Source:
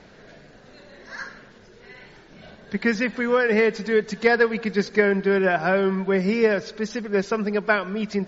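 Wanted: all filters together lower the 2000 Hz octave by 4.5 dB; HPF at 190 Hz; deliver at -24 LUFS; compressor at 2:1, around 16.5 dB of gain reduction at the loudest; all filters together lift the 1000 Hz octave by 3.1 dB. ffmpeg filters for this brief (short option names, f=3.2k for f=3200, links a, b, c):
-af "highpass=190,equalizer=f=1k:t=o:g=7,equalizer=f=2k:t=o:g=-9,acompressor=threshold=-45dB:ratio=2,volume=13.5dB"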